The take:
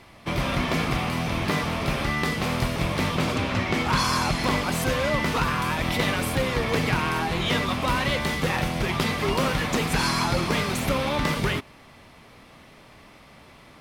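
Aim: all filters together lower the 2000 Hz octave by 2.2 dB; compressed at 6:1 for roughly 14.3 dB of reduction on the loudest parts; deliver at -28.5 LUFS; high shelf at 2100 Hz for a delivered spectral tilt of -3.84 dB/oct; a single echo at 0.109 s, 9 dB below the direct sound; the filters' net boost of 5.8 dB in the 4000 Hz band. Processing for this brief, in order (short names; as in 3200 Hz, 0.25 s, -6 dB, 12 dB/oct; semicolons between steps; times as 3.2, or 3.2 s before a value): bell 2000 Hz -6.5 dB; high shelf 2100 Hz +3.5 dB; bell 4000 Hz +6 dB; compressor 6:1, threshold -35 dBFS; echo 0.109 s -9 dB; gain +7.5 dB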